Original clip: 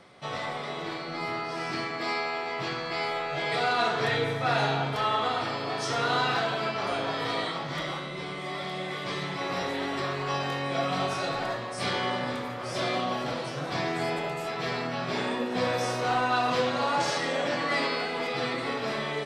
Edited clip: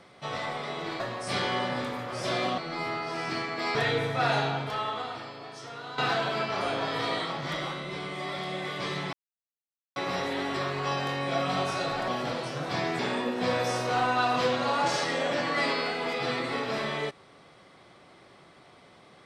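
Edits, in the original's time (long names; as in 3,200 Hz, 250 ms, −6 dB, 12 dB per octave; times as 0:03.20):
0:02.17–0:04.01: remove
0:04.56–0:06.24: fade out quadratic, to −14.5 dB
0:09.39: splice in silence 0.83 s
0:11.51–0:13.09: move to 0:01.00
0:14.00–0:15.13: remove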